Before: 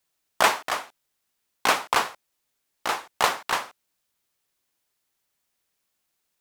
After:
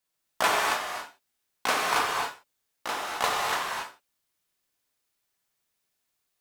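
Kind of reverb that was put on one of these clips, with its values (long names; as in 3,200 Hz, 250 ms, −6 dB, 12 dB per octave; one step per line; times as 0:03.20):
reverb whose tail is shaped and stops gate 300 ms flat, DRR −3 dB
level −6.5 dB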